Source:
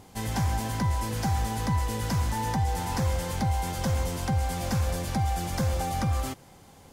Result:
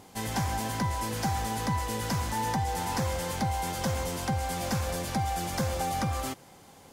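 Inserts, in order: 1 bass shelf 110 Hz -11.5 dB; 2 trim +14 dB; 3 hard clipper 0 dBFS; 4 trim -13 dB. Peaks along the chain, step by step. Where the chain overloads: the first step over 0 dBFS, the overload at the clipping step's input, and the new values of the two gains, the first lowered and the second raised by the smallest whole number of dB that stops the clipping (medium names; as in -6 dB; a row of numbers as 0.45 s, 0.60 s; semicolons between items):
-18.0 dBFS, -4.0 dBFS, -4.0 dBFS, -17.0 dBFS; nothing clips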